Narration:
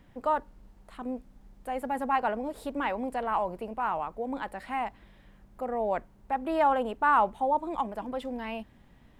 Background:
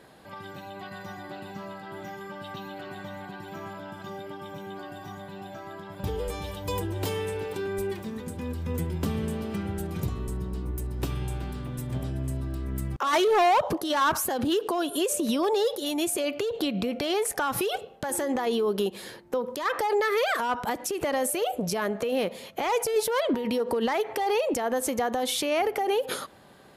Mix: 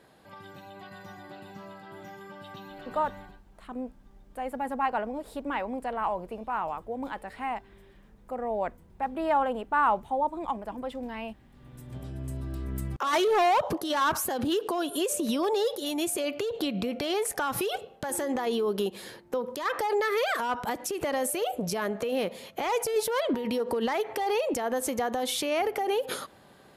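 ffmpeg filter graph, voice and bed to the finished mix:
ffmpeg -i stem1.wav -i stem2.wav -filter_complex "[0:a]adelay=2700,volume=-1dB[link_01];[1:a]volume=21.5dB,afade=type=out:start_time=3.19:duration=0.22:silence=0.0668344,afade=type=in:start_time=11.5:duration=1.11:silence=0.0446684[link_02];[link_01][link_02]amix=inputs=2:normalize=0" out.wav

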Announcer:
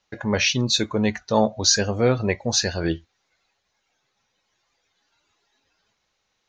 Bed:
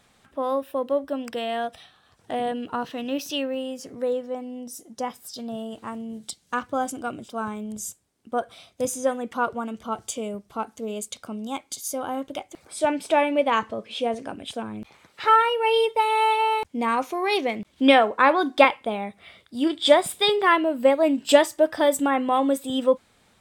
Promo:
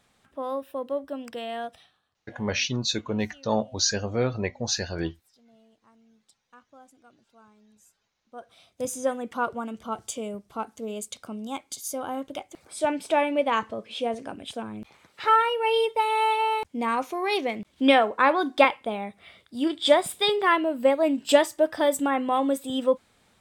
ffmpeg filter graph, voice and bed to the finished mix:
ffmpeg -i stem1.wav -i stem2.wav -filter_complex "[0:a]adelay=2150,volume=-6dB[link_01];[1:a]volume=18dB,afade=type=out:start_time=1.68:duration=0.49:silence=0.0944061,afade=type=in:start_time=8.27:duration=0.72:silence=0.0668344[link_02];[link_01][link_02]amix=inputs=2:normalize=0" out.wav

